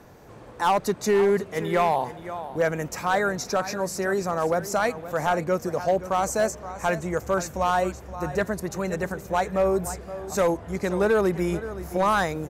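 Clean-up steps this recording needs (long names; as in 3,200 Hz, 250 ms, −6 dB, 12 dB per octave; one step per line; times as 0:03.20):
clipped peaks rebuilt −15 dBFS
echo removal 523 ms −14 dB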